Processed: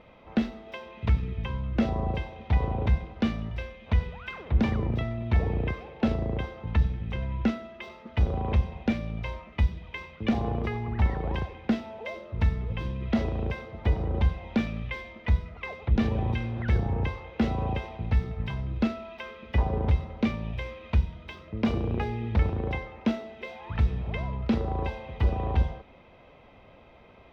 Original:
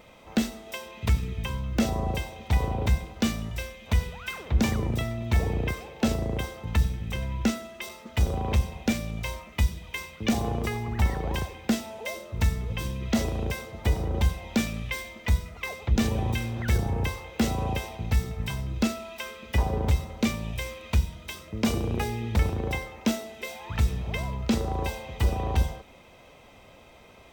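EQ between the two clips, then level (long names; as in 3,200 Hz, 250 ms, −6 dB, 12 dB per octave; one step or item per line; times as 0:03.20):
high-frequency loss of the air 310 metres
0.0 dB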